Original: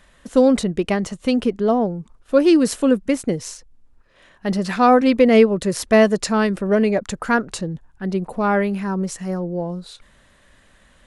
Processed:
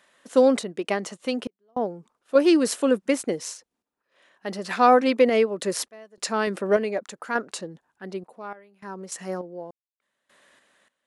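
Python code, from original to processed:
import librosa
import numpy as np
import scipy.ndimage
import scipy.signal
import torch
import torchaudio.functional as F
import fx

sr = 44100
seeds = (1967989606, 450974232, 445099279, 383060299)

y = scipy.signal.sosfilt(scipy.signal.butter(2, 330.0, 'highpass', fs=sr, output='sos'), x)
y = fx.tremolo_random(y, sr, seeds[0], hz=3.4, depth_pct=100)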